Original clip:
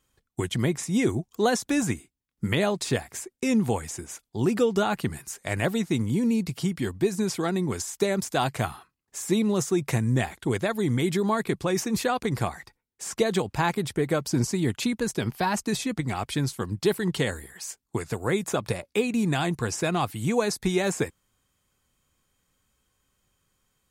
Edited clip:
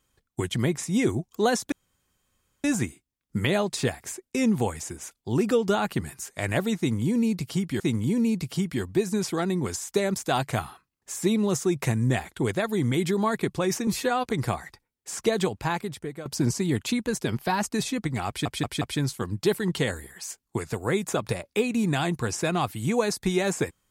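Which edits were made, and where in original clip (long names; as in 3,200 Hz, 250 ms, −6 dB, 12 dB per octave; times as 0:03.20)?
0:01.72: splice in room tone 0.92 s
0:05.86–0:06.88: repeat, 2 plays
0:11.93–0:12.18: time-stretch 1.5×
0:13.36–0:14.19: fade out, to −15.5 dB
0:16.21: stutter 0.18 s, 4 plays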